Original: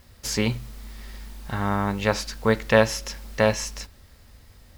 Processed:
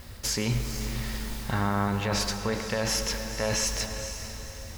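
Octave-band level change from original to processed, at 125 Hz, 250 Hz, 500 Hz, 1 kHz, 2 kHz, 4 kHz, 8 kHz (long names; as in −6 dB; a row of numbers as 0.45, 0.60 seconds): −1.5, −4.0, −8.5, −4.0, −5.5, +1.5, +3.5 decibels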